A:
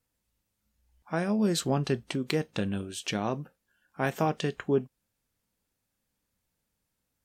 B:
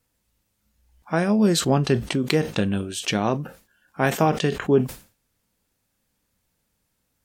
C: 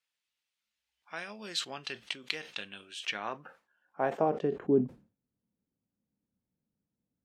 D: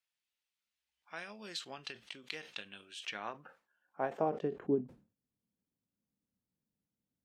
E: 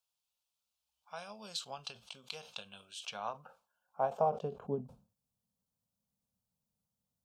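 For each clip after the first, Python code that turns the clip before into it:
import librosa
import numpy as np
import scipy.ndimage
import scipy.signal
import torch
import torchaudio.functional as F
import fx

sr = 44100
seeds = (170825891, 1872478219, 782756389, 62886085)

y1 = fx.sustainer(x, sr, db_per_s=150.0)
y1 = y1 * librosa.db_to_amplitude(7.5)
y2 = fx.filter_sweep_bandpass(y1, sr, from_hz=3000.0, to_hz=210.0, start_s=2.78, end_s=5.04, q=1.3)
y2 = y2 * librosa.db_to_amplitude(-5.0)
y3 = fx.end_taper(y2, sr, db_per_s=210.0)
y3 = y3 * librosa.db_to_amplitude(-4.5)
y4 = fx.fixed_phaser(y3, sr, hz=790.0, stages=4)
y4 = y4 * librosa.db_to_amplitude(4.5)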